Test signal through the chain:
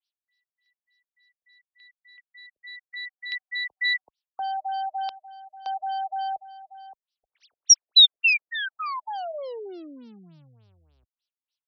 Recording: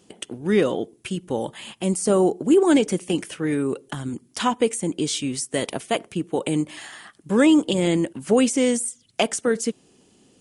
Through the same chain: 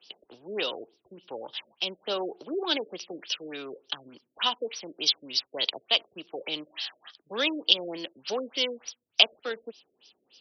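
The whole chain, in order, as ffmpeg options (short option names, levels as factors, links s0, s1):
-filter_complex "[0:a]aeval=exprs='if(lt(val(0),0),0.708*val(0),val(0))':c=same,acrossover=split=150|460|5300[s0][s1][s2][s3];[s0]acompressor=threshold=0.00891:ratio=6[s4];[s4][s1][s2][s3]amix=inputs=4:normalize=0,aexciter=amount=11.9:drive=6.6:freq=3000,acrossover=split=400 2900:gain=0.141 1 0.141[s5][s6][s7];[s5][s6][s7]amix=inputs=3:normalize=0,crystalizer=i=5.5:c=0,highpass=47,afftfilt=real='re*lt(b*sr/1024,630*pow(6100/630,0.5+0.5*sin(2*PI*3.4*pts/sr)))':imag='im*lt(b*sr/1024,630*pow(6100/630,0.5+0.5*sin(2*PI*3.4*pts/sr)))':win_size=1024:overlap=0.75,volume=0.376"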